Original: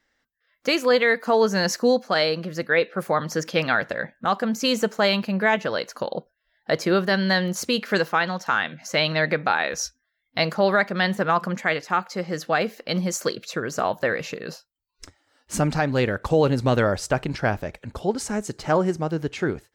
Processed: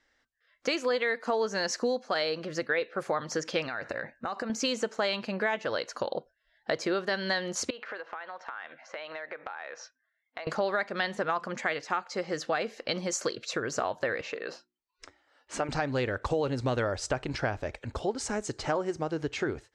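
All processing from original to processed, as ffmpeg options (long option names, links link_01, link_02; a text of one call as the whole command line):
ffmpeg -i in.wav -filter_complex "[0:a]asettb=1/sr,asplit=3[link_01][link_02][link_03];[link_01]atrim=end=3.664[link_04];[link_02]atrim=start=3.66:end=4.5,asetpts=PTS-STARTPTS,afade=type=in:duration=0.004:curve=qsin,afade=type=out:start_time=0.836:duration=0.004:curve=qsin,acompressor=threshold=-27dB:ratio=12:attack=3.2:release=140:knee=1:detection=peak,asuperstop=centerf=3300:order=8:qfactor=6.4[link_05];[link_03]atrim=start=4.496[link_06];[link_04][link_05]acrossfade=duration=0.004:curve1=hsin:curve2=qsin[link_07];[link_07][link_06]acrossfade=duration=0.004:curve1=qsin:curve2=hsin,asettb=1/sr,asplit=3[link_08][link_09][link_10];[link_08]atrim=end=7.704[link_11];[link_09]atrim=start=7.7:end=10.47,asetpts=PTS-STARTPTS,afade=type=in:duration=0.004:curve=qsin,afade=type=out:start_time=2.766:duration=0.004:curve=qsin,highpass=560,lowpass=2000,acompressor=threshold=-35dB:ratio=10:attack=3.2:release=140:knee=1:detection=peak[link_12];[link_10]atrim=start=10.466[link_13];[link_11][link_12]acrossfade=duration=0.004:curve1=hsin:curve2=qsin[link_14];[link_14][link_13]acrossfade=duration=0.004:curve1=qsin:curve2=hsin,asettb=1/sr,asplit=3[link_15][link_16][link_17];[link_15]atrim=end=14.214[link_18];[link_16]atrim=start=14.21:end=15.69,asetpts=PTS-STARTPTS,afade=type=in:duration=0.004:curve=qsin,afade=type=out:start_time=1.476:duration=0.004:curve=qsin,bass=frequency=250:gain=-15,treble=frequency=4000:gain=-10,bandreject=frequency=60:width_type=h:width=6,bandreject=frequency=120:width_type=h:width=6,bandreject=frequency=180:width_type=h:width=6,bandreject=frequency=240:width_type=h:width=6,bandreject=frequency=300:width_type=h:width=6,bandreject=frequency=360:width_type=h:width=6[link_19];[link_17]atrim=start=15.686[link_20];[link_18][link_19]acrossfade=duration=0.004:curve1=hsin:curve2=qsin[link_21];[link_21][link_20]acrossfade=duration=0.004:curve1=qsin:curve2=hsin,lowpass=frequency=8400:width=0.5412,lowpass=frequency=8400:width=1.3066,equalizer=frequency=180:width_type=o:width=0.52:gain=-11,acompressor=threshold=-28dB:ratio=3" out.wav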